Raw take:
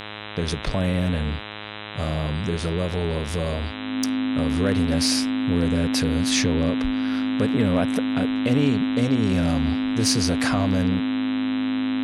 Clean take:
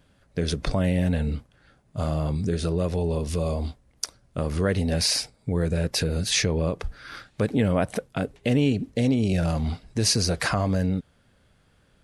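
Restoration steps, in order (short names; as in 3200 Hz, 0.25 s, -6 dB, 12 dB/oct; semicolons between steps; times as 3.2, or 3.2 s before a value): clip repair -11.5 dBFS; de-hum 105.3 Hz, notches 38; notch 260 Hz, Q 30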